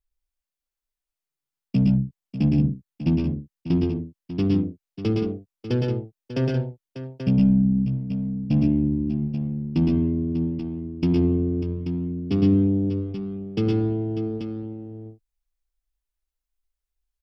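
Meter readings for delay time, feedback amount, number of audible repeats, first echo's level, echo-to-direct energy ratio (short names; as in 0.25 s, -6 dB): 0.112 s, no steady repeat, 3, -3.5 dB, 0.0 dB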